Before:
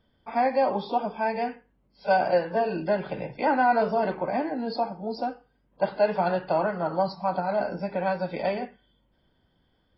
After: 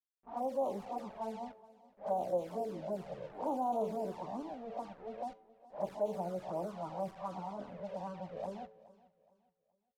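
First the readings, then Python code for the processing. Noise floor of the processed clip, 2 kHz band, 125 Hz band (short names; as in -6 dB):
-83 dBFS, -27.5 dB, -12.0 dB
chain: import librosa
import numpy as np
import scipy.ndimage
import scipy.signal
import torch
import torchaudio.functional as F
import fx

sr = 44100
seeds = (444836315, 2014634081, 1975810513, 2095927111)

y = fx.spec_swells(x, sr, rise_s=0.31)
y = scipy.signal.sosfilt(scipy.signal.ellip(4, 1.0, 40, 1200.0, 'lowpass', fs=sr, output='sos'), y)
y = np.where(np.abs(y) >= 10.0 ** (-38.0 / 20.0), y, 0.0)
y = fx.comb_fb(y, sr, f0_hz=110.0, decay_s=0.97, harmonics='all', damping=0.0, mix_pct=50)
y = fx.env_flanger(y, sr, rest_ms=5.2, full_db=-24.0)
y = fx.env_lowpass(y, sr, base_hz=610.0, full_db=-30.0)
y = fx.echo_feedback(y, sr, ms=420, feedback_pct=34, wet_db=-20.5)
y = F.gain(torch.from_numpy(y), -4.5).numpy()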